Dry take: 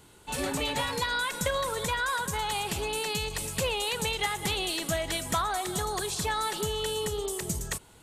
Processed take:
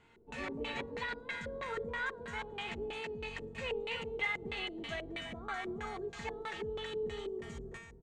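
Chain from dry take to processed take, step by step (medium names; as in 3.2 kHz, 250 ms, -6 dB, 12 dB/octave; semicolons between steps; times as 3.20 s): peaking EQ 7.1 kHz +10 dB 0.79 oct; peak limiter -19 dBFS, peak gain reduction 6 dB; feedback comb 230 Hz, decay 0.84 s, mix 90%; LFO low-pass square 3.1 Hz 400–2200 Hz; on a send: delay 330 ms -11 dB; on the sum: trim +7 dB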